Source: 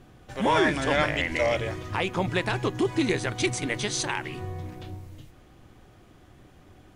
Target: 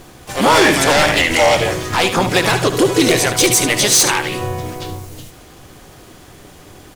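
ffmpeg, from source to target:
ffmpeg -i in.wav -filter_complex "[0:a]bass=frequency=250:gain=-5,treble=frequency=4000:gain=10,aecho=1:1:73:0.266,aeval=exprs='0.422*sin(PI/2*2.82*val(0)/0.422)':channel_layout=same,asplit=3[link_01][link_02][link_03];[link_02]asetrate=58866,aresample=44100,atempo=0.749154,volume=-7dB[link_04];[link_03]asetrate=66075,aresample=44100,atempo=0.66742,volume=-12dB[link_05];[link_01][link_04][link_05]amix=inputs=3:normalize=0" out.wav

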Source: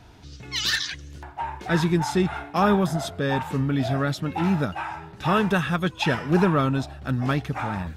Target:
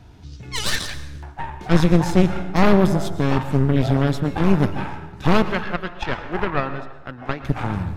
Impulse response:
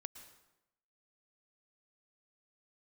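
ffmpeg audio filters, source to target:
-filter_complex "[0:a]asettb=1/sr,asplit=3[link_01][link_02][link_03];[link_01]atrim=end=5.424[link_04];[link_02]atrim=start=5.42:end=7.44,asetpts=PTS-STARTPTS,afade=type=in:duration=0.004:curve=qsin,afade=type=out:start_time=2.016:duration=0.004:curve=qsin,acrossover=split=420 2700:gain=0.0794 1 0.141[link_05][link_06][link_07];[link_05][link_06][link_07]amix=inputs=3:normalize=0[link_08];[link_03]atrim=start=7.436[link_09];[link_04][link_08]acrossfade=duration=0.004:curve1=hsin:curve2=qsin[link_10];[link_10][link_09]acrossfade=duration=0.004:curve1=qsin:curve2=hsin,aeval=exprs='0.355*(cos(1*acos(clip(val(0)/0.355,-1,1)))-cos(1*PI/2))+0.158*(cos(4*acos(clip(val(0)/0.355,-1,1)))-cos(4*PI/2))':channel_layout=same,asplit=2[link_11][link_12];[1:a]atrim=start_sample=2205,lowshelf=frequency=350:gain=10[link_13];[link_12][link_13]afir=irnorm=-1:irlink=0,volume=12dB[link_14];[link_11][link_14]amix=inputs=2:normalize=0,volume=-12.5dB"

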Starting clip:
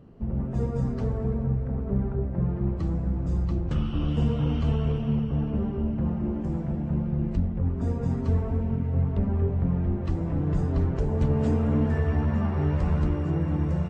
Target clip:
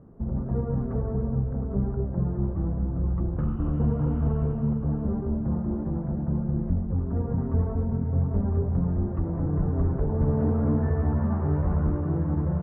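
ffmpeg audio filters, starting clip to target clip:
ffmpeg -i in.wav -af "atempo=1.1,lowpass=frequency=1500:width=0.5412,lowpass=frequency=1500:width=1.3066" out.wav

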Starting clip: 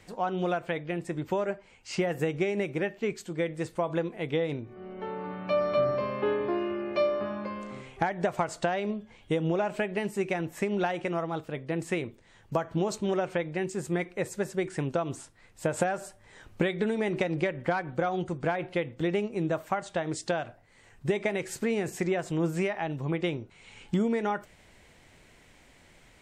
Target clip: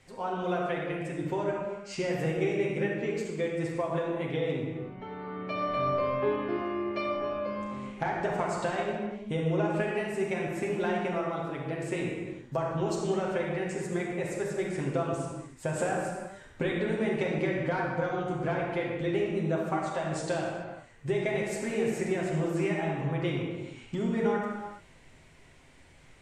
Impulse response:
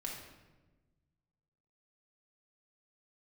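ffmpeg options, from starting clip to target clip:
-filter_complex "[1:a]atrim=start_sample=2205,afade=type=out:start_time=0.28:duration=0.01,atrim=end_sample=12789,asetrate=23373,aresample=44100[link_01];[0:a][link_01]afir=irnorm=-1:irlink=0,volume=-4.5dB"

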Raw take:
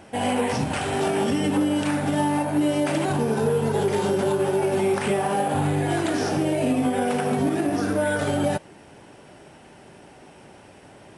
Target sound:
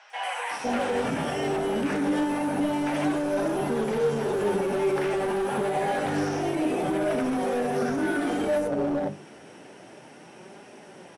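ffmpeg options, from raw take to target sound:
ffmpeg -i in.wav -filter_complex "[0:a]acrossover=split=2600[link_01][link_02];[link_02]acompressor=threshold=-41dB:ratio=4:attack=1:release=60[link_03];[link_01][link_03]amix=inputs=2:normalize=0,highshelf=frequency=2600:gain=-3,bandreject=frequency=50:width_type=h:width=6,bandreject=frequency=100:width_type=h:width=6,bandreject=frequency=150:width_type=h:width=6,bandreject=frequency=200:width_type=h:width=6,bandreject=frequency=250:width_type=h:width=6,bandreject=frequency=300:width_type=h:width=6,bandreject=frequency=350:width_type=h:width=6,bandreject=frequency=400:width_type=h:width=6,acrossover=split=860|5600[link_04][link_05][link_06];[link_06]adelay=100[link_07];[link_04]adelay=510[link_08];[link_08][link_05][link_07]amix=inputs=3:normalize=0,alimiter=limit=-19dB:level=0:latency=1:release=54,highpass=180,equalizer=frequency=5800:width=4.5:gain=8.5,asoftclip=type=hard:threshold=-24.5dB,flanger=delay=4.8:depth=9.7:regen=61:speed=0.28:shape=sinusoidal,volume=7dB" out.wav

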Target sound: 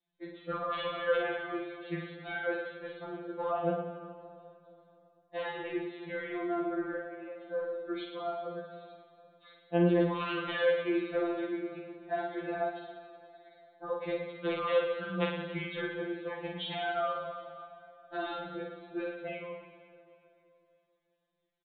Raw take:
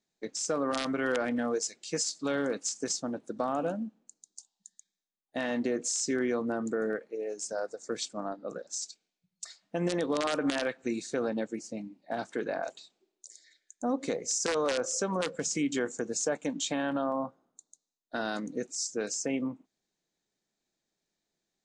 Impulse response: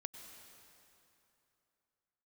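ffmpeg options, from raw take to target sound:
-filter_complex "[0:a]aresample=8000,aresample=44100,aecho=1:1:50|110|182|268.4|372.1:0.631|0.398|0.251|0.158|0.1,asplit=2[link_01][link_02];[1:a]atrim=start_sample=2205,highshelf=frequency=5300:gain=10.5[link_03];[link_02][link_03]afir=irnorm=-1:irlink=0,volume=4dB[link_04];[link_01][link_04]amix=inputs=2:normalize=0,afftfilt=real='re*2.83*eq(mod(b,8),0)':imag='im*2.83*eq(mod(b,8),0)':win_size=2048:overlap=0.75,volume=-6.5dB"

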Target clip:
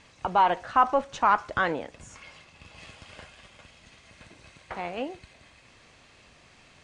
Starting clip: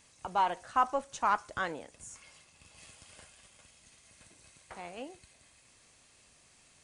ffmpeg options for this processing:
ffmpeg -i in.wav -filter_complex "[0:a]asplit=2[link_01][link_02];[link_02]alimiter=level_in=2dB:limit=-24dB:level=0:latency=1:release=41,volume=-2dB,volume=2dB[link_03];[link_01][link_03]amix=inputs=2:normalize=0,lowpass=3600,volume=3.5dB" out.wav

